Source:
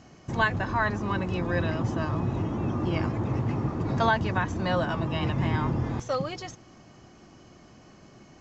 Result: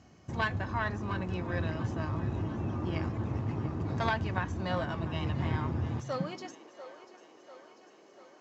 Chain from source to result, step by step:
harmonic generator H 2 −7 dB, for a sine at −9 dBFS
feedback echo with a high-pass in the loop 693 ms, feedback 63%, high-pass 290 Hz, level −16 dB
on a send at −17 dB: convolution reverb RT60 0.45 s, pre-delay 3 ms
on the sum: high-pass filter sweep 64 Hz → 410 Hz, 0:05.74–0:06.68
level −7.5 dB

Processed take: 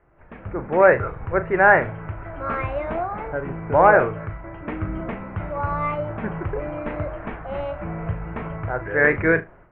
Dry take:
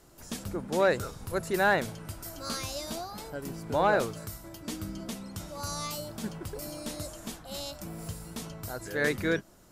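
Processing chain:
on a send: flutter between parallel walls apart 6.4 metres, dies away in 0.2 s
on the sum: automatic gain control gain up to 14 dB
Butterworth low-pass 2,300 Hz 48 dB per octave
parametric band 230 Hz −9.5 dB 0.97 octaves

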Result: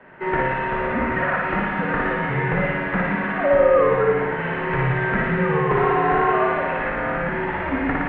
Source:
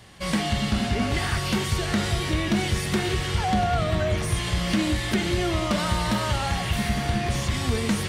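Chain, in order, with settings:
flutter between parallel walls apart 9.9 metres, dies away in 1.2 s
single-sideband voice off tune −180 Hz 350–2,200 Hz
level +6.5 dB

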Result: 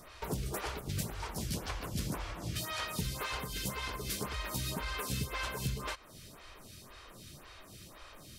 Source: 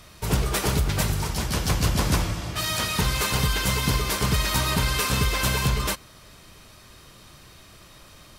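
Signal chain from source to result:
downward compressor 4 to 1, threshold −32 dBFS, peak gain reduction 12.5 dB
phaser with staggered stages 1.9 Hz

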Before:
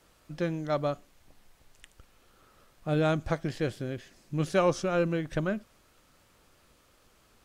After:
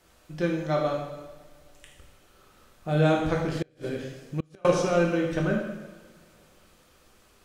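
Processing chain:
coupled-rooms reverb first 0.97 s, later 2.6 s, DRR −1.5 dB
0:03.54–0:04.65: gate with flip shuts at −18 dBFS, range −34 dB

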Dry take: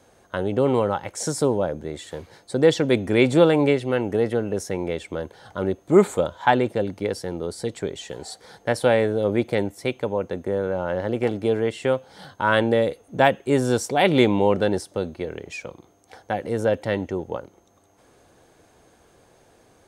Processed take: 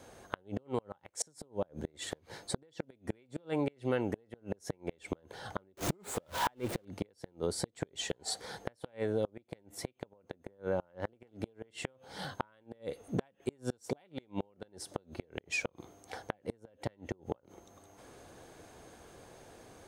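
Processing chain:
0:05.77–0:06.85: converter with a step at zero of −26.5 dBFS
downward compressor 16 to 1, threshold −28 dBFS, peak gain reduction 20 dB
gate with flip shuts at −22 dBFS, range −33 dB
level +1.5 dB

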